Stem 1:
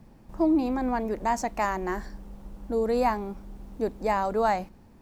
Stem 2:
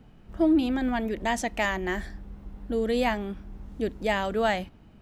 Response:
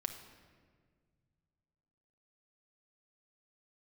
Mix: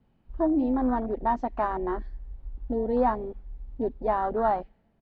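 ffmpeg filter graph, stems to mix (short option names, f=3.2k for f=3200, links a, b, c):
-filter_complex "[0:a]bandreject=f=5.5k:w=13,volume=0dB,asplit=2[a][b];[1:a]adelay=7.3,volume=0dB,asplit=2[c][d];[d]volume=-17.5dB[e];[b]apad=whole_len=221434[f];[c][f]sidechaincompress=threshold=-32dB:ratio=8:attack=16:release=966[g];[2:a]atrim=start_sample=2205[h];[e][h]afir=irnorm=-1:irlink=0[i];[a][g][i]amix=inputs=3:normalize=0,lowpass=f=4.4k:w=0.5412,lowpass=f=4.4k:w=1.3066,afwtdn=0.0398"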